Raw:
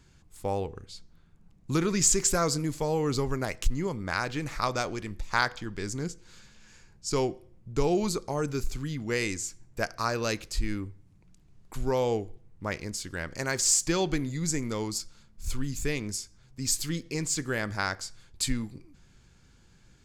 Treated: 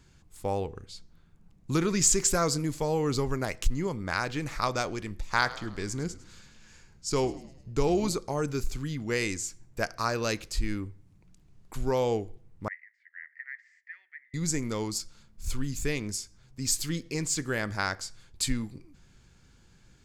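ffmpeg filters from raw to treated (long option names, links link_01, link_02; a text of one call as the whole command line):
ffmpeg -i in.wav -filter_complex "[0:a]asettb=1/sr,asplit=3[link_01][link_02][link_03];[link_01]atrim=end=5.264[link_04];[link_02]atrim=start=5.26:end=8.14,asetpts=PTS-STARTPTS,afade=type=in:duration=0.004:curve=qsin,afade=type=out:start_time=2.876:duration=0.004:curve=qsin,asplit=6[link_05][link_06][link_07][link_08][link_09][link_10];[link_06]adelay=103,afreqshift=-81,volume=-17dB[link_11];[link_07]adelay=206,afreqshift=-162,volume=-22.7dB[link_12];[link_08]adelay=309,afreqshift=-243,volume=-28.4dB[link_13];[link_09]adelay=412,afreqshift=-324,volume=-34dB[link_14];[link_10]adelay=515,afreqshift=-405,volume=-39.7dB[link_15];[link_05][link_11][link_12][link_13][link_14][link_15]amix=inputs=6:normalize=0,atrim=end_sample=127008[link_16];[link_03]atrim=start=8.136[link_17];[link_04][link_16]acrossfade=duration=0.004:curve1=hsin:curve2=qsin[link_18];[link_18][link_17]acrossfade=duration=0.004:curve1=qsin:curve2=hsin,asettb=1/sr,asplit=3[link_19][link_20][link_21];[link_19]atrim=end=12.684[link_22];[link_20]atrim=start=12.68:end=14.34,asetpts=PTS-STARTPTS,afade=type=in:duration=0.004:curve=qsin,afade=type=out:start_time=1.656:duration=0.004:curve=qsin,asuperpass=centerf=1900:order=4:qfactor=6.8[link_23];[link_21]atrim=start=14.336[link_24];[link_22][link_23]acrossfade=duration=0.004:curve1=hsin:curve2=qsin[link_25];[link_25][link_24]acrossfade=duration=0.004:curve1=qsin:curve2=hsin" out.wav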